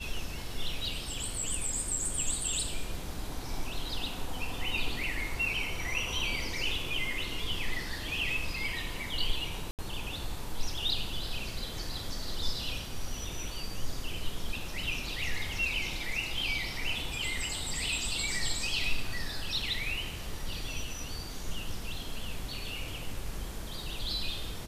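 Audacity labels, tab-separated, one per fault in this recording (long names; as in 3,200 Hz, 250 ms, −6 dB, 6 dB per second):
9.710000	9.790000	drop-out 78 ms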